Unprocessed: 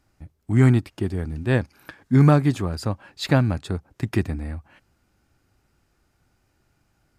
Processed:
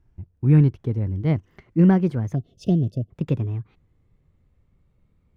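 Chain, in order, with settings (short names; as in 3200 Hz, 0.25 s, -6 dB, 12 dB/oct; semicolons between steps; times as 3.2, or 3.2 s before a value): speed glide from 113% -> 155%; RIAA curve playback; spectral gain 2.35–3.1, 720–2600 Hz -26 dB; gain -8 dB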